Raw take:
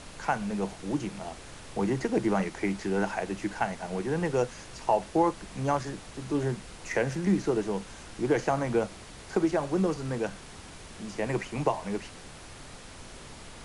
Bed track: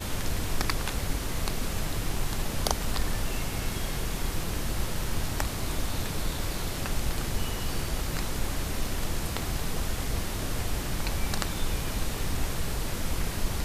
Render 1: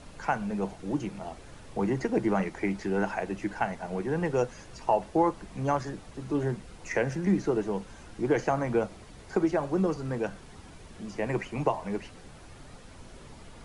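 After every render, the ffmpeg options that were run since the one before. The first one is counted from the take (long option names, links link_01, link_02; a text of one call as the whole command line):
ffmpeg -i in.wav -af "afftdn=noise_reduction=8:noise_floor=-46" out.wav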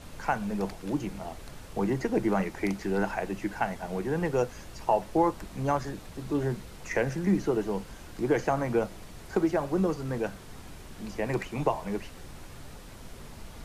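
ffmpeg -i in.wav -i bed.wav -filter_complex "[1:a]volume=-18dB[link_01];[0:a][link_01]amix=inputs=2:normalize=0" out.wav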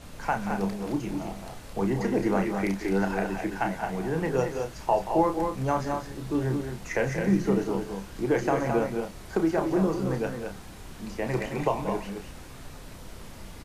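ffmpeg -i in.wav -filter_complex "[0:a]asplit=2[link_01][link_02];[link_02]adelay=31,volume=-7dB[link_03];[link_01][link_03]amix=inputs=2:normalize=0,aecho=1:1:180.8|215.7:0.251|0.501" out.wav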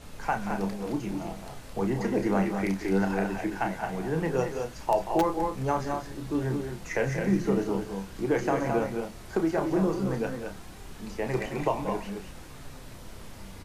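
ffmpeg -i in.wav -filter_complex "[0:a]asplit=2[link_01][link_02];[link_02]aeval=exprs='(mod(3.98*val(0)+1,2)-1)/3.98':channel_layout=same,volume=-6.5dB[link_03];[link_01][link_03]amix=inputs=2:normalize=0,flanger=delay=2.3:depth=8.3:regen=79:speed=0.18:shape=sinusoidal" out.wav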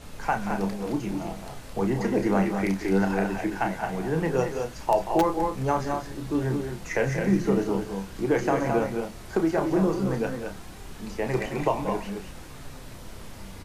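ffmpeg -i in.wav -af "volume=2.5dB" out.wav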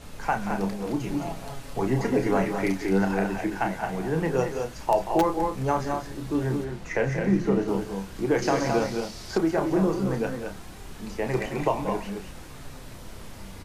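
ffmpeg -i in.wav -filter_complex "[0:a]asettb=1/sr,asplit=3[link_01][link_02][link_03];[link_01]atrim=end=0.994[link_04];[link_02]atrim=start=0.99:end=2.85,asetpts=PTS-STARTPTS,afade=type=in:duration=0.004:curve=qsin,afade=type=out:start_time=1.856:duration=0.004:curve=qsin,aecho=1:1:7.2:0.65,atrim=end_sample=82026[link_05];[link_03]atrim=start=2.846[link_06];[link_04][link_05]acrossfade=duration=0.004:curve1=hsin:curve2=qsin[link_07];[link_07][link_06]acrossfade=duration=0.004:curve1=qsin:curve2=hsin,asettb=1/sr,asplit=3[link_08][link_09][link_10];[link_08]atrim=end=6.644[link_11];[link_09]atrim=start=6.64:end=7.68,asetpts=PTS-STARTPTS,afade=type=in:duration=0.004:curve=qsin,afade=type=out:start_time=1.036:duration=0.004:curve=qsin,lowpass=frequency=4000:poles=1[link_12];[link_10]atrim=start=7.676[link_13];[link_11][link_12]acrossfade=duration=0.004:curve1=hsin:curve2=qsin[link_14];[link_14][link_13]acrossfade=duration=0.004:curve1=qsin:curve2=hsin,asettb=1/sr,asplit=3[link_15][link_16][link_17];[link_15]atrim=end=8.424[link_18];[link_16]atrim=start=8.42:end=9.38,asetpts=PTS-STARTPTS,afade=type=in:duration=0.004:curve=qsin,afade=type=out:start_time=0.956:duration=0.004:curve=qsin,equalizer=frequency=5000:width=1.4:gain=14[link_19];[link_17]atrim=start=9.376[link_20];[link_18][link_19]acrossfade=duration=0.004:curve1=hsin:curve2=qsin[link_21];[link_21][link_20]acrossfade=duration=0.004:curve1=qsin:curve2=hsin" out.wav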